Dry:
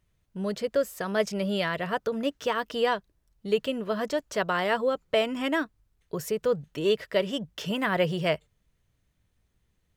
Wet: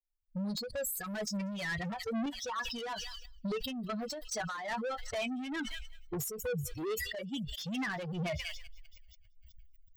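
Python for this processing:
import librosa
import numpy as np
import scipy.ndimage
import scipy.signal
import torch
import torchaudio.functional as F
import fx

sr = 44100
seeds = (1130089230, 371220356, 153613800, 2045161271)

p1 = fx.bin_expand(x, sr, power=3.0)
p2 = fx.recorder_agc(p1, sr, target_db=-24.5, rise_db_per_s=68.0, max_gain_db=30)
p3 = fx.low_shelf(p2, sr, hz=340.0, db=8.0, at=(0.7, 2.26))
p4 = np.clip(p3, -10.0 ** (-34.0 / 20.0), 10.0 ** (-34.0 / 20.0))
p5 = p3 + F.gain(torch.from_numpy(p4), -10.0).numpy()
p6 = fx.high_shelf(p5, sr, hz=3300.0, db=-8.0, at=(6.24, 7.41))
p7 = p6 + fx.echo_wet_highpass(p6, sr, ms=191, feedback_pct=63, hz=5100.0, wet_db=-23.5, dry=0)
p8 = fx.chorus_voices(p7, sr, voices=4, hz=0.26, base_ms=13, depth_ms=1.3, mix_pct=25)
p9 = 10.0 ** (-33.5 / 20.0) * np.tanh(p8 / 10.0 ** (-33.5 / 20.0))
p10 = p9 * (1.0 - 0.51 / 2.0 + 0.51 / 2.0 * np.cos(2.0 * np.pi * 2.3 * (np.arange(len(p9)) / sr)))
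p11 = fx.sustainer(p10, sr, db_per_s=32.0)
y = F.gain(torch.from_numpy(p11), 2.0).numpy()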